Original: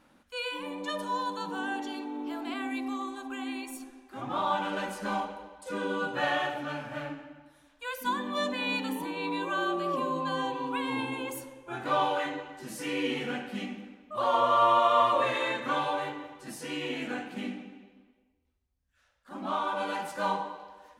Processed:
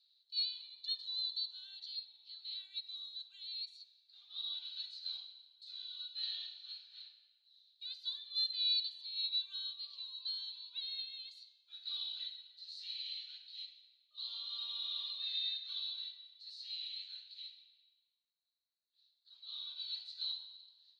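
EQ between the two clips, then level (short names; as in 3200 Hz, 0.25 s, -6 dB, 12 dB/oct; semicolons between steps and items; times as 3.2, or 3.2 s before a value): Butterworth band-pass 4100 Hz, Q 7.3; +12.0 dB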